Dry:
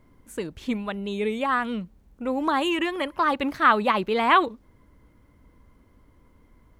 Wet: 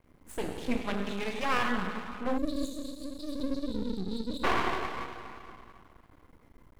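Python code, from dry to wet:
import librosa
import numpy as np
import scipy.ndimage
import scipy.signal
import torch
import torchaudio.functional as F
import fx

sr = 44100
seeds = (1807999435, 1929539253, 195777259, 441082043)

y = fx.peak_eq(x, sr, hz=320.0, db=-10.0, octaves=1.5, at=(1.04, 1.63))
y = fx.lowpass(y, sr, hz=4700.0, slope=12, at=(3.45, 4.34))
y = fx.rev_plate(y, sr, seeds[0], rt60_s=2.5, hf_ratio=0.85, predelay_ms=0, drr_db=1.5)
y = fx.spec_erase(y, sr, start_s=2.38, length_s=2.06, low_hz=320.0, high_hz=3700.0)
y = np.maximum(y, 0.0)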